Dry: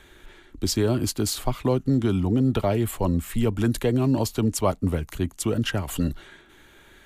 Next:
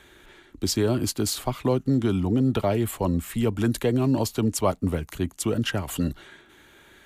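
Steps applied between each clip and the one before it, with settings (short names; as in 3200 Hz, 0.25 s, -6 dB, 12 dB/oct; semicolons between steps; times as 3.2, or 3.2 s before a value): HPF 78 Hz 6 dB/oct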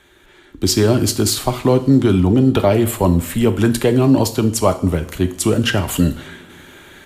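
two-slope reverb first 0.54 s, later 3.1 s, from -22 dB, DRR 8 dB; AGC gain up to 11 dB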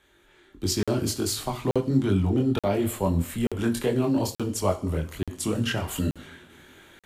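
chorus voices 2, 1.4 Hz, delay 23 ms, depth 3 ms; crackling interface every 0.88 s, samples 2048, zero, from 0.83; gain -7 dB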